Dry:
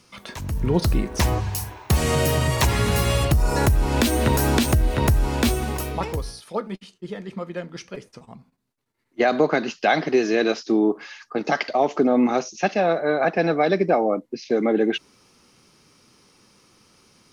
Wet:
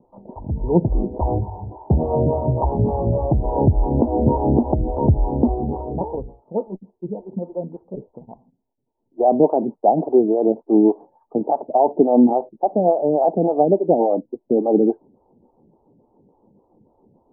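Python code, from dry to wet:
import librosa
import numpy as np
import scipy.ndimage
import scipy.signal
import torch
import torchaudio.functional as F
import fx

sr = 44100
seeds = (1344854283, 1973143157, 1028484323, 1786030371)

y = scipy.signal.sosfilt(scipy.signal.cheby1(6, 1.0, 920.0, 'lowpass', fs=sr, output='sos'), x)
y = fx.stagger_phaser(y, sr, hz=3.5)
y = y * librosa.db_to_amplitude(6.5)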